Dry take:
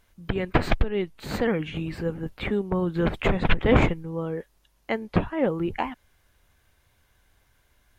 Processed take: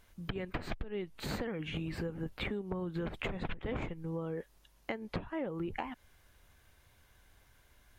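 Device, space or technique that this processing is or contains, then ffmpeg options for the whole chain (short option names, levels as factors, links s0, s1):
serial compression, peaks first: -af "acompressor=threshold=0.0355:ratio=6,acompressor=threshold=0.0141:ratio=2"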